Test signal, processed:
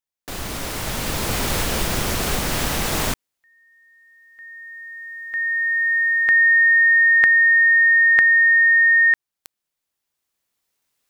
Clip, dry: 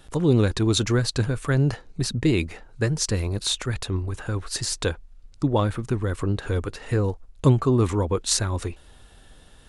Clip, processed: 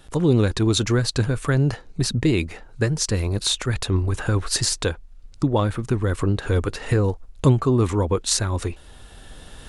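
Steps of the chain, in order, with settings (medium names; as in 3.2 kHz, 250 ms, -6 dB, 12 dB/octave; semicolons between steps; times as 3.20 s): recorder AGC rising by 7.3 dB/s; trim +1 dB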